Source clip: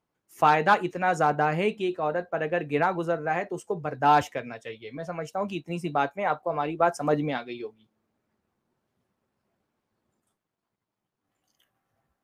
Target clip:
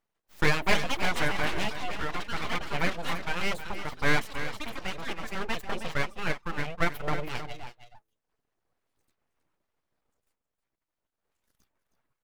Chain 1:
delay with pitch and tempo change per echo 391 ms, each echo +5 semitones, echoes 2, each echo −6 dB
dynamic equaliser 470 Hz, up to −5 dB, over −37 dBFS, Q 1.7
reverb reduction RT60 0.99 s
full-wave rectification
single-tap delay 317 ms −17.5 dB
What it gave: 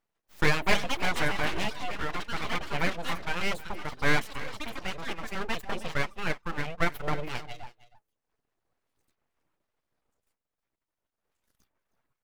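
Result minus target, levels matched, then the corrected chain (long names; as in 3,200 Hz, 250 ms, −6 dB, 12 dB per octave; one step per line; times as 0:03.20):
echo-to-direct −6.5 dB
delay with pitch and tempo change per echo 391 ms, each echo +5 semitones, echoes 2, each echo −6 dB
dynamic equaliser 470 Hz, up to −5 dB, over −37 dBFS, Q 1.7
reverb reduction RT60 0.99 s
full-wave rectification
single-tap delay 317 ms −11 dB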